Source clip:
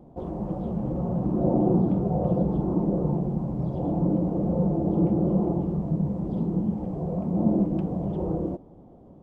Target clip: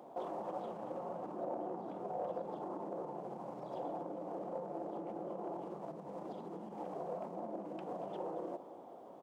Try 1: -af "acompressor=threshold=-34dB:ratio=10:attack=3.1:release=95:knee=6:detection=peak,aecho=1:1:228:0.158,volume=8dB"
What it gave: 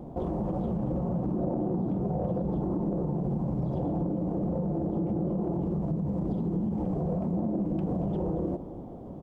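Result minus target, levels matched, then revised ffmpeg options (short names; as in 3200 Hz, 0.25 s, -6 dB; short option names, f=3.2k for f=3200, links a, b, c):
1000 Hz band -11.0 dB
-af "acompressor=threshold=-34dB:ratio=10:attack=3.1:release=95:knee=6:detection=peak,highpass=720,aecho=1:1:228:0.158,volume=8dB"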